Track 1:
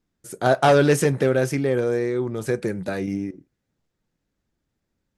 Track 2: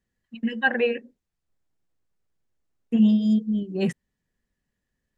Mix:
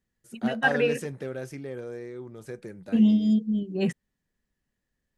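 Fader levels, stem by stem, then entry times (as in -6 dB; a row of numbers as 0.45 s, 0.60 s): -15.0 dB, -1.5 dB; 0.00 s, 0.00 s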